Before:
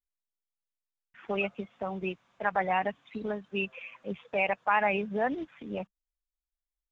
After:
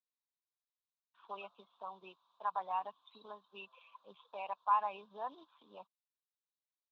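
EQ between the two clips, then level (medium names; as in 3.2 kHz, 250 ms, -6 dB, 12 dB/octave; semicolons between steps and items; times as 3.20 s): two resonant band-passes 2 kHz, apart 1.9 oct; +1.5 dB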